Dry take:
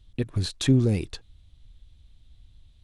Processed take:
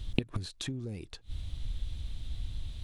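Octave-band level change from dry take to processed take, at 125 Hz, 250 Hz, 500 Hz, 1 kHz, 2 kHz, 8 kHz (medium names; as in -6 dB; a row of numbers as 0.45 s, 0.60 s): -11.5 dB, -12.5 dB, -12.5 dB, -2.5 dB, -4.0 dB, -9.5 dB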